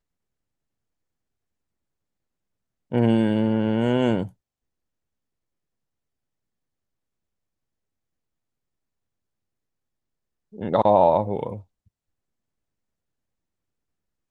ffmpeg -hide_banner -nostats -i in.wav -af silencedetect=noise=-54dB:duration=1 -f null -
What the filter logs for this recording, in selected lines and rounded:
silence_start: 0.00
silence_end: 2.91 | silence_duration: 2.91
silence_start: 4.33
silence_end: 10.52 | silence_duration: 6.19
silence_start: 11.88
silence_end: 14.31 | silence_duration: 2.43